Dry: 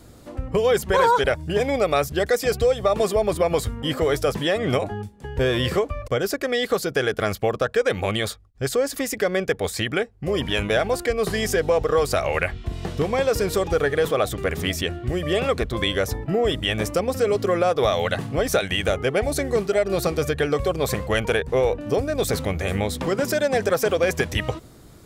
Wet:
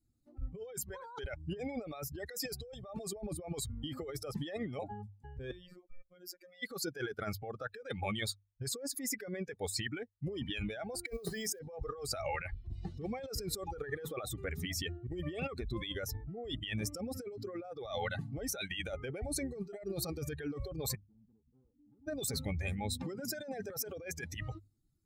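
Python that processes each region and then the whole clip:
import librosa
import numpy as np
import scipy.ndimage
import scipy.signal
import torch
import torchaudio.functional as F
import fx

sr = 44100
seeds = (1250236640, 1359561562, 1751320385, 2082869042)

y = fx.chain(x, sr, fx.level_steps(step_db=17),
    fx.robotise(hz=179.0), at=(5.51, 6.63))
y = fx.chain(y, sr, fx.peak_eq(hz=540.0, db=7.5, octaves=0.53),
    fx.hum_notches(base_hz=50, count=5),
    fx.quant_float(bits=2), at=(11.07, 11.59))
y = fx.chain(y, sr, fx.ladder_lowpass(hz=310.0, resonance_pct=45),
    fx.tube_stage(drive_db=39.0, bias=0.6), at=(20.95, 22.07))
y = fx.bin_expand(y, sr, power=2.0)
y = fx.hum_notches(y, sr, base_hz=50, count=2)
y = fx.over_compress(y, sr, threshold_db=-34.0, ratio=-1.0)
y = y * librosa.db_to_amplitude(-6.0)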